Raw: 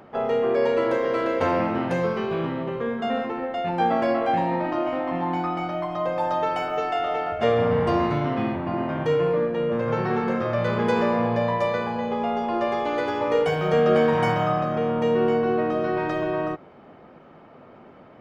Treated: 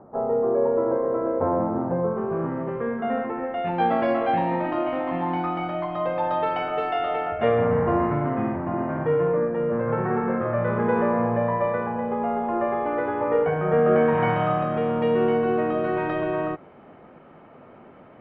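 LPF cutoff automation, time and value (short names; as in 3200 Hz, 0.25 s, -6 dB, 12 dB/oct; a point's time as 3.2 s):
LPF 24 dB/oct
2.05 s 1100 Hz
2.82 s 2100 Hz
3.38 s 2100 Hz
3.81 s 3500 Hz
7.07 s 3500 Hz
7.88 s 1900 Hz
13.82 s 1900 Hz
14.52 s 3200 Hz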